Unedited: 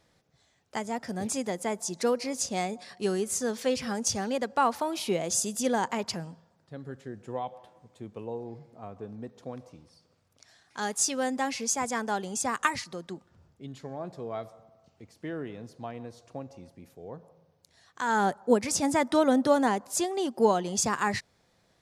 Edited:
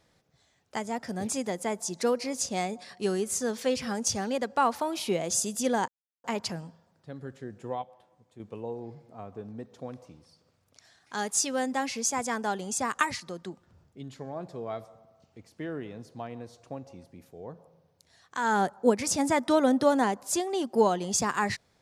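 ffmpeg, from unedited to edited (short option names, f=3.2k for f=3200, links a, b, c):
-filter_complex "[0:a]asplit=4[a][b][c][d];[a]atrim=end=5.88,asetpts=PTS-STARTPTS,afade=t=out:st=5.876:d=0.004:c=hsin,apad=pad_dur=0.36[e];[b]atrim=start=5.88:end=7.462,asetpts=PTS-STARTPTS,afade=t=in:d=0.004:c=hsin[f];[c]atrim=start=7.458:end=8.042,asetpts=PTS-STARTPTS,volume=-7dB[g];[d]atrim=start=8.038[h];[e][f]concat=n=2:v=0:a=1[i];[i][g]acrossfade=d=0.004:c1=hsin:c2=hsin[j];[j][h]acrossfade=d=0.004:c1=hsin:c2=hsin"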